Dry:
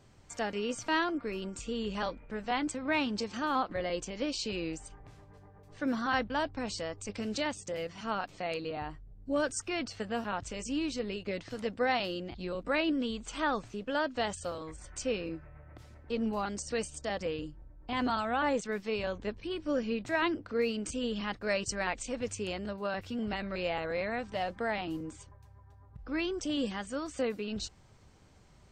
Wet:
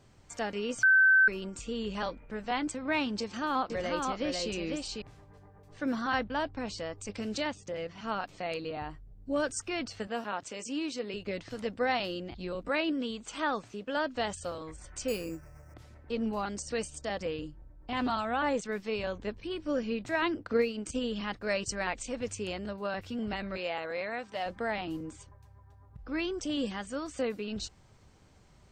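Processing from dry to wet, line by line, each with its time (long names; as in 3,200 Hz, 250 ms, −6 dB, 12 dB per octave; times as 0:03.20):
0:00.83–0:01.28: beep over 1,540 Hz −18 dBFS
0:03.20–0:05.02: single-tap delay 498 ms −3.5 dB
0:06.16–0:06.96: high-frequency loss of the air 58 metres
0:07.50–0:08.04: high-frequency loss of the air 97 metres
0:10.07–0:11.14: high-pass filter 240 Hz
0:12.69–0:13.97: high-pass filter 160 Hz 6 dB per octave
0:15.08–0:15.74: bad sample-rate conversion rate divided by 6×, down filtered, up hold
0:17.45–0:18.23: highs frequency-modulated by the lows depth 0.14 ms
0:20.43–0:21.03: transient designer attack +7 dB, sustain −7 dB
0:23.57–0:24.46: high-pass filter 400 Hz 6 dB per octave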